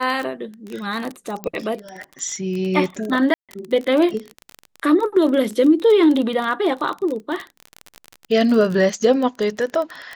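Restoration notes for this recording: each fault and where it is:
crackle 29/s -23 dBFS
1.44 pop -13 dBFS
3.34–3.49 gap 0.147 s

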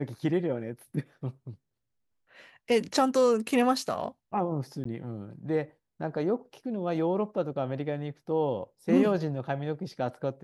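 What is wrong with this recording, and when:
4.84–4.85 gap

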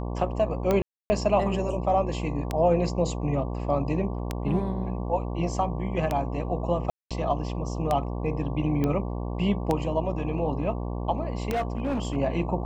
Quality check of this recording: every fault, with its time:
buzz 60 Hz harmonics 19 -31 dBFS
tick 33 1/3 rpm -12 dBFS
0.82–1.1 gap 0.28 s
6.9–7.11 gap 0.206 s
8.84 pop -15 dBFS
11.51–12.17 clipped -23 dBFS

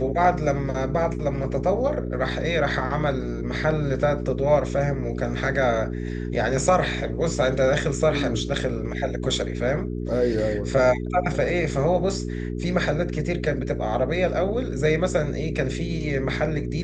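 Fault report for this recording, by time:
hum 60 Hz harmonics 7 -29 dBFS

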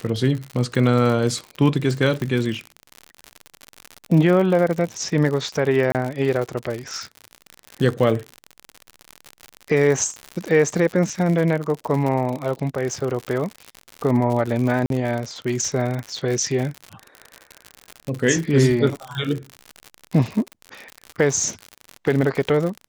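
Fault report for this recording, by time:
crackle 77/s -25 dBFS
2.22 pop -14 dBFS
5.92–5.95 gap 28 ms
14.86–14.9 gap 42 ms

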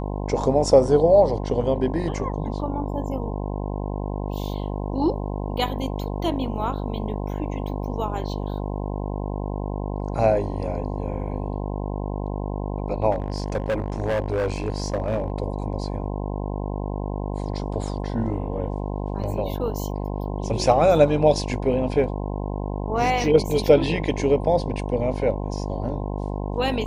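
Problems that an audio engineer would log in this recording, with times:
buzz 50 Hz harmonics 21 -28 dBFS
13.11–15.3 clipped -19.5 dBFS

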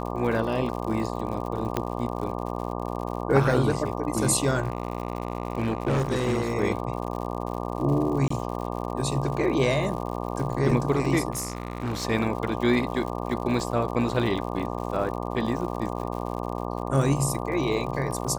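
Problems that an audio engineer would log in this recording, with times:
buzz 60 Hz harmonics 20 -31 dBFS
crackle 100/s -34 dBFS
1.77 pop -11 dBFS
4.63–6.55 clipped -20.5 dBFS
8.28–8.3 gap 24 ms
11.31–12.05 clipped -25 dBFS

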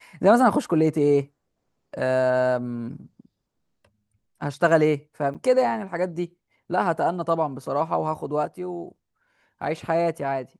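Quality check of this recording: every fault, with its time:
5.34–5.35 gap 7.5 ms

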